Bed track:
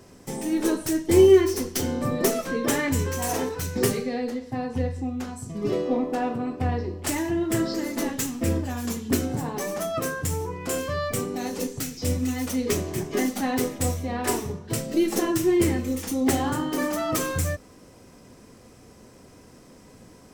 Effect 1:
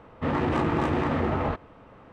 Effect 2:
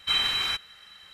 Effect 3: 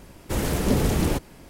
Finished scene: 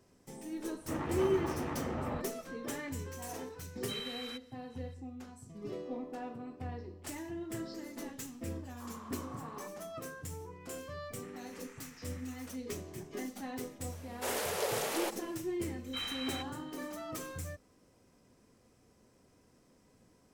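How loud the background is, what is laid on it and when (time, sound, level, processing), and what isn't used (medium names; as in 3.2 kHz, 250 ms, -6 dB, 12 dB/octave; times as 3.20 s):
bed track -16 dB
0.66 s: add 1 -12 dB
3.81 s: add 2 -18 dB + treble shelf 10 kHz +8 dB
8.50 s: add 3 -3 dB + band-pass filter 1.1 kHz, Q 13
11.00 s: add 1 -11 dB + ladder band-pass 2.5 kHz, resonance 30%
13.92 s: add 3 -5 dB + steep high-pass 430 Hz 48 dB/octave
15.86 s: add 2 -12 dB + treble shelf 4 kHz -7 dB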